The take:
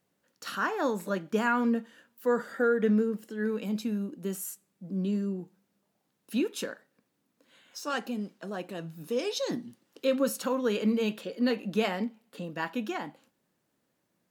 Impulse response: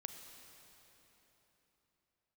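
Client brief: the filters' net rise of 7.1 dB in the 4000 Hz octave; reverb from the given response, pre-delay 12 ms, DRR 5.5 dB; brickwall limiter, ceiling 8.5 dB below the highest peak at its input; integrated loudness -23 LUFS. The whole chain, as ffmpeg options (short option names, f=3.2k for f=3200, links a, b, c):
-filter_complex "[0:a]equalizer=f=4k:t=o:g=9,alimiter=limit=-20.5dB:level=0:latency=1,asplit=2[a][b];[1:a]atrim=start_sample=2205,adelay=12[c];[b][c]afir=irnorm=-1:irlink=0,volume=-2dB[d];[a][d]amix=inputs=2:normalize=0,volume=8.5dB"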